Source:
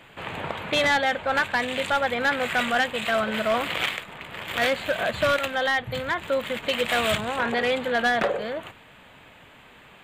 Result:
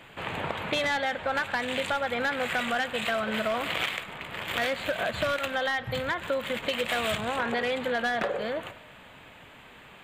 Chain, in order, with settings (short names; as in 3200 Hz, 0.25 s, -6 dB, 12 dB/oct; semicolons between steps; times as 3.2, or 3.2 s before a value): compressor, threshold -25 dBFS, peak gain reduction 6.5 dB; on a send: BPF 680–3900 Hz + reverb RT60 0.95 s, pre-delay 0.102 s, DRR 15.5 dB